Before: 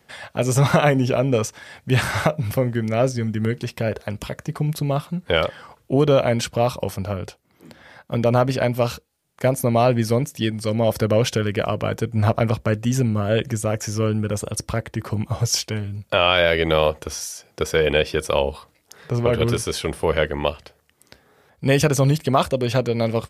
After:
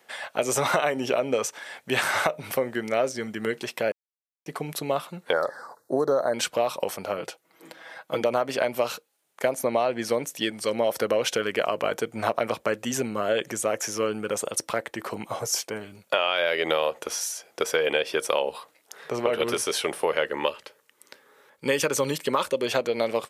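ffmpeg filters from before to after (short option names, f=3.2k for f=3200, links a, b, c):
-filter_complex "[0:a]asettb=1/sr,asplit=3[a][b][c];[a]atrim=end=5.334[d];[b]atrim=start=5.33:end=6.34,asetpts=PTS-STARTPTS,afade=t=in:d=0.004:c=qsin,afade=t=out:st=1.006:d=0.004:c=qsin,asuperstop=centerf=2700:order=8:qfactor=1.2[e];[c]atrim=start=6.336[f];[d][e]acrossfade=d=0.004:c1=hsin:c2=qsin[g];[g][f]acrossfade=d=0.004:c1=qsin:c2=hsin,asettb=1/sr,asplit=3[h][i][j];[h]atrim=end=7.174[k];[i]atrim=start=7.17:end=8.21,asetpts=PTS-STARTPTS,afade=t=in:d=0.004:c=qsin,afade=t=out:st=1.036:d=0.004:c=qsin,aecho=1:1:6.2:0.63,atrim=end_sample=45864[l];[j]atrim=start=8.206[m];[k][l]acrossfade=d=0.004:c1=hsin:c2=qsin[n];[n][m]acrossfade=d=0.004:c1=qsin:c2=hsin,asettb=1/sr,asplit=3[o][p][q];[o]atrim=end=9.554[r];[p]atrim=start=9.55:end=10.13,asetpts=PTS-STARTPTS,afade=t=in:d=0.004:c=qsin,afade=t=out:st=0.576:d=0.004:c=qsin,highshelf=f=10k:g=-10[s];[q]atrim=start=10.126[t];[r][s]acrossfade=d=0.004:c1=hsin:c2=qsin[u];[u][t]acrossfade=d=0.004:c1=qsin:c2=hsin,asettb=1/sr,asplit=3[v][w][x];[v]atrim=end=15.394[y];[w]atrim=start=15.39:end=15.81,asetpts=PTS-STARTPTS,afade=t=in:d=0.004:c=qsin,afade=t=out:st=0.416:d=0.004:c=qsin,equalizer=f=3.3k:w=0.93:g=-10.5[z];[x]atrim=start=15.806[aa];[y][z]acrossfade=d=0.004:c1=hsin:c2=qsin[ab];[ab][aa]acrossfade=d=0.004:c1=qsin:c2=hsin,asettb=1/sr,asplit=3[ac][ad][ae];[ac]atrim=end=20.304[af];[ad]atrim=start=20.3:end=22.68,asetpts=PTS-STARTPTS,afade=t=in:d=0.004:c=qsin,afade=t=out:st=2.376:d=0.004:c=qsin,asuperstop=centerf=710:order=4:qfactor=4[ag];[ae]atrim=start=22.676[ah];[af][ag]acrossfade=d=0.004:c1=hsin:c2=qsin[ai];[ai][ah]acrossfade=d=0.004:c1=qsin:c2=hsin,asplit=3[aj][ak][al];[aj]atrim=end=3.92,asetpts=PTS-STARTPTS,afade=t=out:st=3.916:d=0.004:c=hsin[am];[ak]atrim=start=3.92:end=4.46,asetpts=PTS-STARTPTS,volume=0[an];[al]atrim=start=4.46,asetpts=PTS-STARTPTS,afade=t=in:d=0.004:c=hsin[ao];[am][an][ao]concat=n=3:v=0:a=1,highpass=410,equalizer=f=4.9k:w=3.3:g=-3.5,acompressor=threshold=-21dB:ratio=6,volume=1.5dB"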